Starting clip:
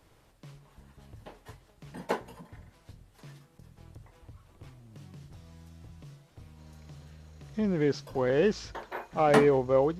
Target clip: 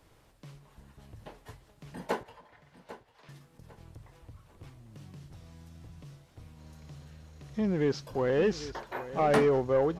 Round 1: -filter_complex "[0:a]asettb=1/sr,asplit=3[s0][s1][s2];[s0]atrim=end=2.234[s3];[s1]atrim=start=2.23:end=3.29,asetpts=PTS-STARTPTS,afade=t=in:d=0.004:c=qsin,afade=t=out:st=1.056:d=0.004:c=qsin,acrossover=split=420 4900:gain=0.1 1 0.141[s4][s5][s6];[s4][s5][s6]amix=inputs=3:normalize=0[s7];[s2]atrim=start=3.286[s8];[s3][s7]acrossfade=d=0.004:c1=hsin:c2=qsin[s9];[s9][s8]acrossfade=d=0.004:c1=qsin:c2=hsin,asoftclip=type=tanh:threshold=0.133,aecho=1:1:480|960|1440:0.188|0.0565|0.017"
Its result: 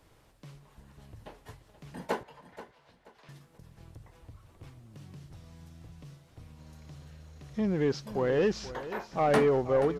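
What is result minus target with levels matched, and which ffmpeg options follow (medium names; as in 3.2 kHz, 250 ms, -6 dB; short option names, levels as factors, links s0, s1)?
echo 318 ms early
-filter_complex "[0:a]asettb=1/sr,asplit=3[s0][s1][s2];[s0]atrim=end=2.234[s3];[s1]atrim=start=2.23:end=3.29,asetpts=PTS-STARTPTS,afade=t=in:d=0.004:c=qsin,afade=t=out:st=1.056:d=0.004:c=qsin,acrossover=split=420 4900:gain=0.1 1 0.141[s4][s5][s6];[s4][s5][s6]amix=inputs=3:normalize=0[s7];[s2]atrim=start=3.286[s8];[s3][s7]acrossfade=d=0.004:c1=hsin:c2=qsin[s9];[s9][s8]acrossfade=d=0.004:c1=qsin:c2=hsin,asoftclip=type=tanh:threshold=0.133,aecho=1:1:798|1596|2394:0.188|0.0565|0.017"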